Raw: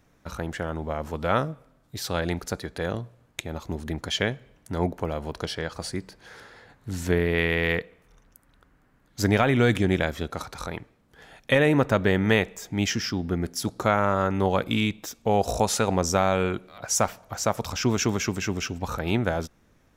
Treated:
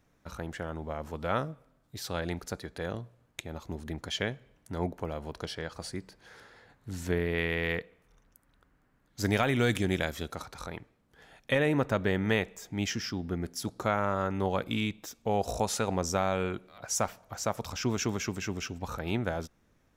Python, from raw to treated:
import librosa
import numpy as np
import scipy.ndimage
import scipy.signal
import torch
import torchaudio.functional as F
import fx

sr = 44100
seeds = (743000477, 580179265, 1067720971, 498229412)

y = fx.high_shelf(x, sr, hz=3900.0, db=9.5, at=(9.24, 10.35))
y = y * 10.0 ** (-6.5 / 20.0)